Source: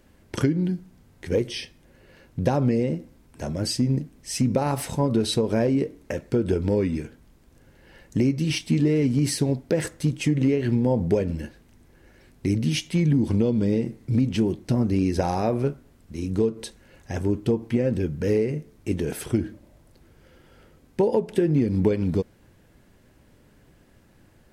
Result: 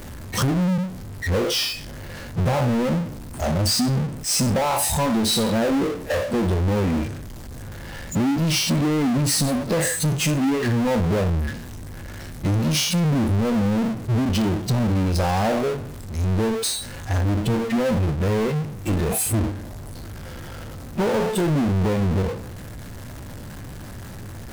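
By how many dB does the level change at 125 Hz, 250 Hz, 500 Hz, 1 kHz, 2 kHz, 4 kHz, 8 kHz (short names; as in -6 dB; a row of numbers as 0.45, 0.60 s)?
+3.0, +1.5, +0.5, +7.0, +7.5, +8.5, +10.5 dB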